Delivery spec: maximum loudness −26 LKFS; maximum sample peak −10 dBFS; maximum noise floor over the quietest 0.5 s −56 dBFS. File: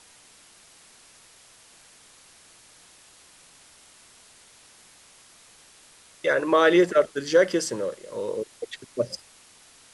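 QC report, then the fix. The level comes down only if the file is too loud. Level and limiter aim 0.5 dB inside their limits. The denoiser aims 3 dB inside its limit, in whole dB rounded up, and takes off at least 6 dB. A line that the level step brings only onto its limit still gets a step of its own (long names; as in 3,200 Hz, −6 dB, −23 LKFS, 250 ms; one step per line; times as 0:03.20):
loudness −23.5 LKFS: out of spec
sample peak −6.5 dBFS: out of spec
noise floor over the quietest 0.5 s −54 dBFS: out of spec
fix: level −3 dB
brickwall limiter −10.5 dBFS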